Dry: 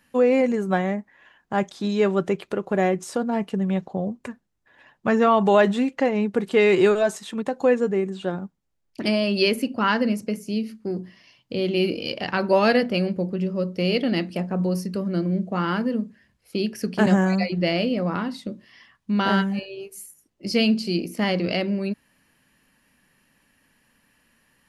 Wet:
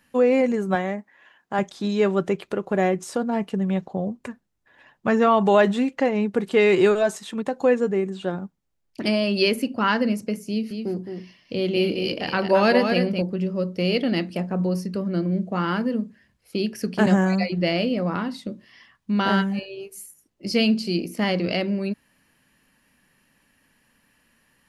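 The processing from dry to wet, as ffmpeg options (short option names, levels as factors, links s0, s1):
-filter_complex "[0:a]asettb=1/sr,asplit=3[s0][s1][s2];[s0]atrim=end=0.754[s3];[s1]atrim=start=0.75:end=1.59,asetpts=PTS-STARTPTS,afade=t=in:d=0.004:c=qsin,afade=t=out:st=0.836:d=0.004:c=qsin,highpass=f=250:p=1[s4];[s2]atrim=start=1.586[s5];[s3][s4]acrossfade=d=0.004:c1=hsin:c2=qsin[s6];[s6][s5]acrossfade=d=0.004:c1=qsin:c2=hsin,asettb=1/sr,asplit=3[s7][s8][s9];[s7]atrim=end=10.494[s10];[s8]atrim=start=10.49:end=13.22,asetpts=PTS-STARTPTS,afade=t=in:d=0.004:c=qsin,afade=t=out:st=2.726:d=0.004:c=qsin,aecho=1:1:216:0.501,atrim=end_sample=120393[s11];[s9]atrim=start=13.216[s12];[s10][s11]acrossfade=d=0.004:c1=hsin:c2=qsin[s13];[s13][s12]acrossfade=d=0.004:c1=qsin:c2=hsin,asettb=1/sr,asplit=3[s14][s15][s16];[s14]atrim=end=14.624[s17];[s15]atrim=start=14.62:end=15.32,asetpts=PTS-STARTPTS,afade=t=in:d=0.004:c=qsin,afade=t=out:st=0.696:d=0.004:c=qsin,highshelf=f=8200:g=-7[s18];[s16]atrim=start=15.316[s19];[s17][s18]acrossfade=d=0.004:c1=hsin:c2=qsin[s20];[s20][s19]acrossfade=d=0.004:c1=qsin:c2=hsin"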